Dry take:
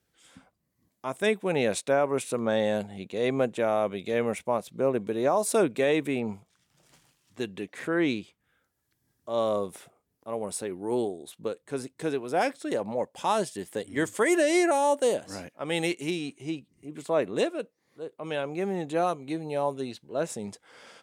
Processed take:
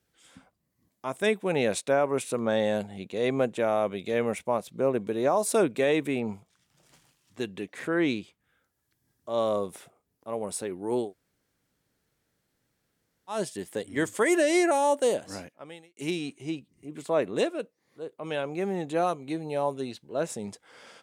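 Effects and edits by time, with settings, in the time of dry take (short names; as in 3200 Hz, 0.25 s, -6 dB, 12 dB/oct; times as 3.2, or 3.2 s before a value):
11.06–13.35 room tone, crossfade 0.16 s
15.37–15.97 fade out quadratic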